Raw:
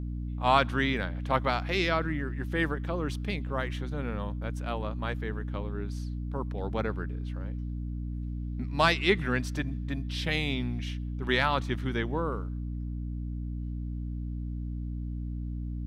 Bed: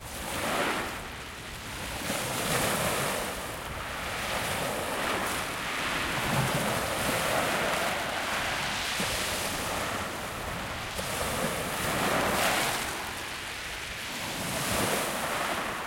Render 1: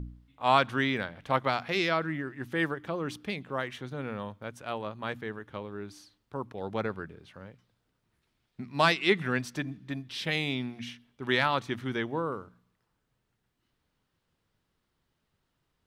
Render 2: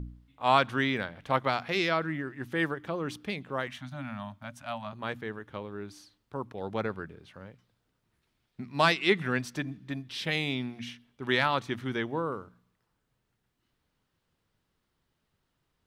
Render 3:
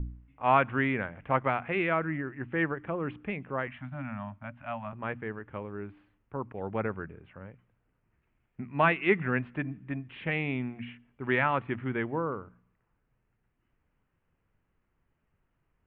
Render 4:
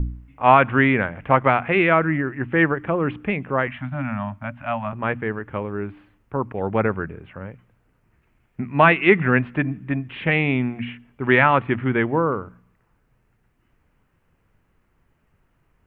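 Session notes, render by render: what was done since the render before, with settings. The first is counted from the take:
de-hum 60 Hz, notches 5
3.67–4.93 s: Chebyshev band-stop 290–580 Hz, order 5
steep low-pass 2.7 kHz 48 dB/octave; bass shelf 66 Hz +9 dB
trim +11 dB; peak limiter -2 dBFS, peak gain reduction 3 dB

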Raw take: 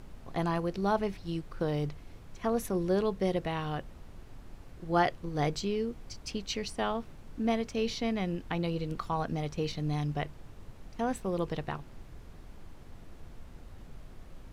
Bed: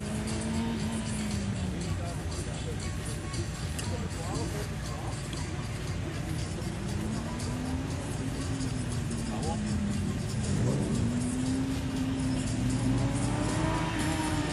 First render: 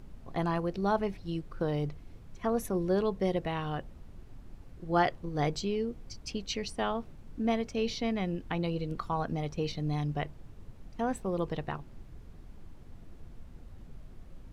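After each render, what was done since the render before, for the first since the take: noise reduction 6 dB, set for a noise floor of -50 dBFS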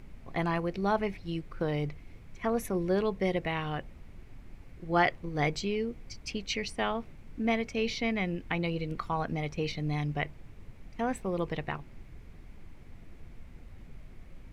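peaking EQ 2.2 kHz +10 dB 0.57 oct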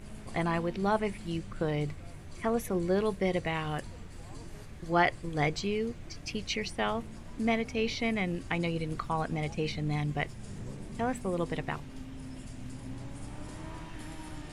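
add bed -14.5 dB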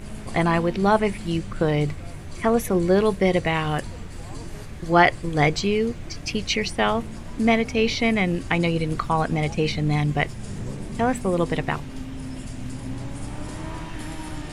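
trim +9.5 dB

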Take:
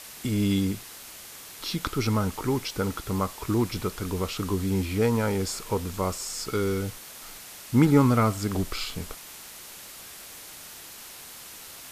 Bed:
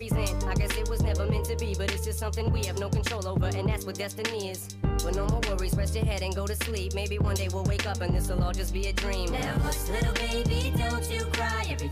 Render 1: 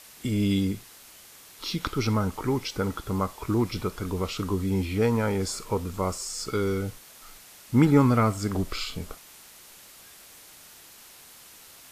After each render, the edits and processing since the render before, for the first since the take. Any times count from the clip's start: noise print and reduce 6 dB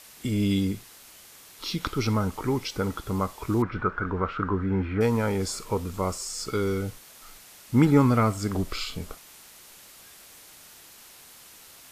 3.62–5.01 s: resonant low-pass 1.5 kHz, resonance Q 5.8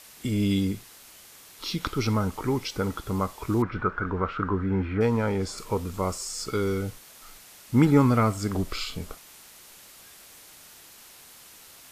4.97–5.58 s: treble shelf 6.6 kHz -11.5 dB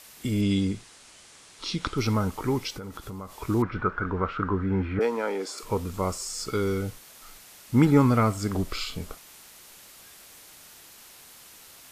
0.41–1.98 s: steep low-pass 9.6 kHz; 2.75–3.42 s: compression, threshold -34 dBFS; 4.99–5.63 s: high-pass 290 Hz 24 dB/octave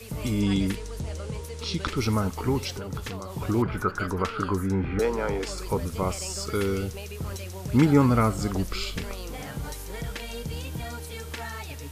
add bed -7.5 dB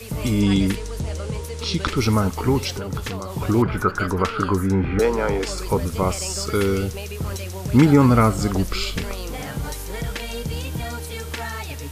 trim +6 dB; peak limiter -3 dBFS, peak gain reduction 3 dB

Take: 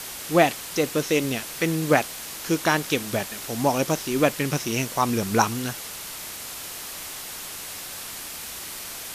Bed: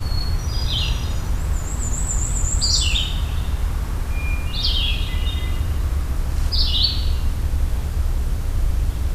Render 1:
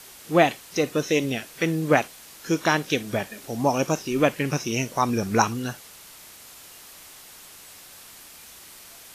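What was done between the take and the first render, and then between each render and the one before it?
noise print and reduce 10 dB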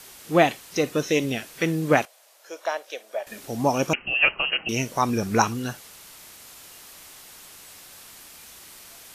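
2.05–3.27 s: ladder high-pass 540 Hz, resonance 65%; 3.93–4.69 s: frequency inversion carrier 3 kHz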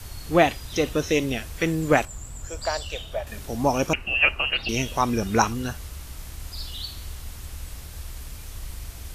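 add bed -16.5 dB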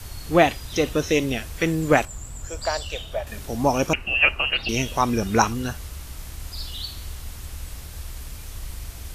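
trim +1.5 dB

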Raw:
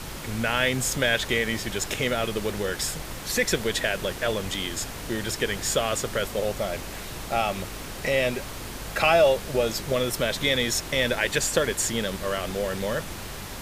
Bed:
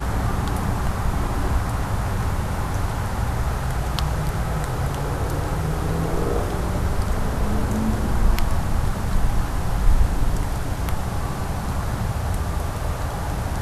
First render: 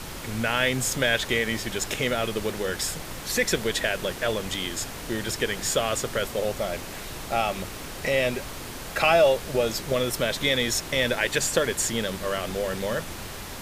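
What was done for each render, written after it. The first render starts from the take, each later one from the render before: de-hum 50 Hz, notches 4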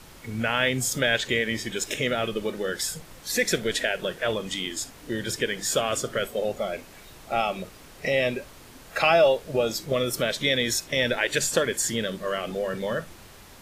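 noise print and reduce 11 dB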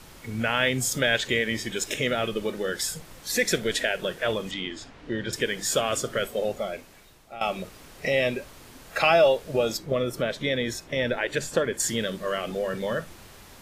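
4.51–5.33 s: low-pass 3.3 kHz; 6.46–7.41 s: fade out, to -16.5 dB; 9.77–11.80 s: treble shelf 2.7 kHz -11.5 dB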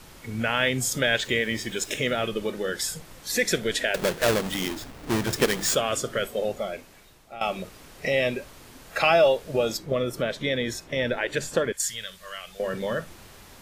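1.19–2.16 s: small samples zeroed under -44.5 dBFS; 3.94–5.75 s: square wave that keeps the level; 11.72–12.60 s: amplifier tone stack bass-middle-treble 10-0-10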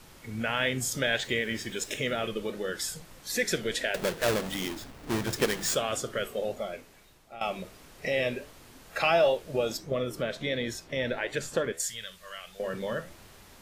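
flange 1.5 Hz, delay 8 ms, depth 7.5 ms, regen -81%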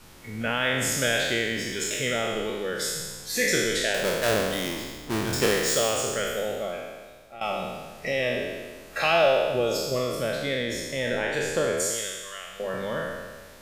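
spectral sustain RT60 1.47 s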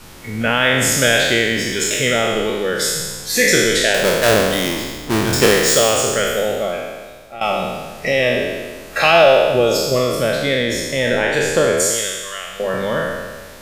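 trim +10 dB; peak limiter -1 dBFS, peak gain reduction 1.5 dB

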